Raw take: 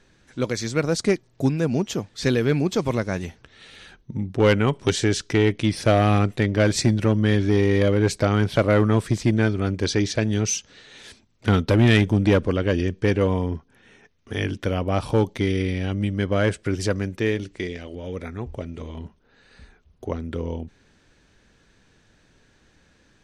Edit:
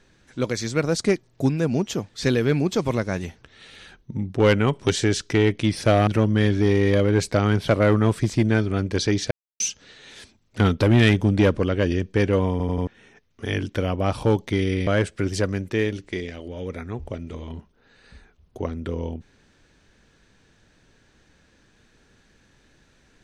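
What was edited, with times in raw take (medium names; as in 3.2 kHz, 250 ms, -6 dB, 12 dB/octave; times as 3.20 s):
6.07–6.95 s: delete
10.19–10.48 s: mute
13.39 s: stutter in place 0.09 s, 4 plays
15.75–16.34 s: delete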